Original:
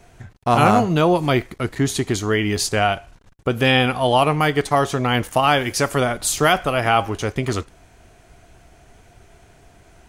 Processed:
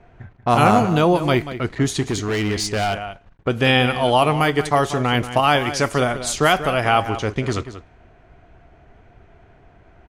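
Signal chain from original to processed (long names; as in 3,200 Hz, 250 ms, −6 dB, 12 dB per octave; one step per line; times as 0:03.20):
low-pass that shuts in the quiet parts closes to 2,000 Hz, open at −14 dBFS
slap from a distant wall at 32 metres, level −12 dB
0:02.01–0:03.48: gain into a clipping stage and back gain 17.5 dB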